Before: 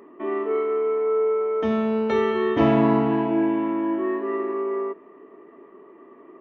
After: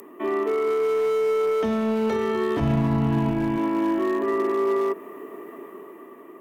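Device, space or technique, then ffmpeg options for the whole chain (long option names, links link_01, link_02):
FM broadcast chain: -filter_complex "[0:a]highpass=61,dynaudnorm=framelen=230:gausssize=7:maxgain=6dB,acrossover=split=220|620|1700[link_01][link_02][link_03][link_04];[link_01]acompressor=threshold=-24dB:ratio=4[link_05];[link_02]acompressor=threshold=-23dB:ratio=4[link_06];[link_03]acompressor=threshold=-29dB:ratio=4[link_07];[link_04]acompressor=threshold=-46dB:ratio=4[link_08];[link_05][link_06][link_07][link_08]amix=inputs=4:normalize=0,aemphasis=mode=production:type=50fm,alimiter=limit=-19dB:level=0:latency=1:release=67,asoftclip=type=hard:threshold=-21dB,lowpass=frequency=15000:width=0.5412,lowpass=frequency=15000:width=1.3066,aemphasis=mode=production:type=50fm,asplit=3[link_09][link_10][link_11];[link_09]afade=type=out:start_time=2.59:duration=0.02[link_12];[link_10]asubboost=boost=9:cutoff=140,afade=type=in:start_time=2.59:duration=0.02,afade=type=out:start_time=3.57:duration=0.02[link_13];[link_11]afade=type=in:start_time=3.57:duration=0.02[link_14];[link_12][link_13][link_14]amix=inputs=3:normalize=0,volume=3dB"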